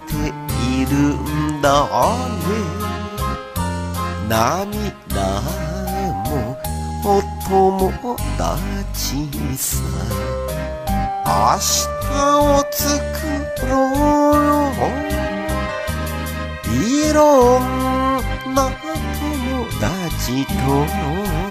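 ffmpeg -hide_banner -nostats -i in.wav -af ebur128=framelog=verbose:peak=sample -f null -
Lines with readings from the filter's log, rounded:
Integrated loudness:
  I:         -18.8 LUFS
  Threshold: -28.8 LUFS
Loudness range:
  LRA:         4.9 LU
  Threshold: -38.8 LUFS
  LRA low:   -21.5 LUFS
  LRA high:  -16.6 LUFS
Sample peak:
  Peak:       -2.1 dBFS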